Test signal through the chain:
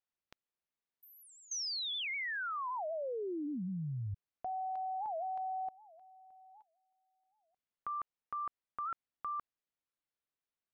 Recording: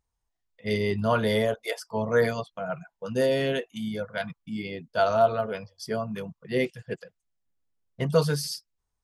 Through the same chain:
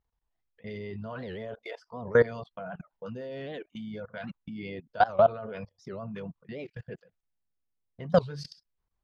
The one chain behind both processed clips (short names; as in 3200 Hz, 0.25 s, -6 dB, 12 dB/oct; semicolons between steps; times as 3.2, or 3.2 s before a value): air absorption 200 m; level quantiser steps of 21 dB; record warp 78 rpm, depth 250 cents; gain +4 dB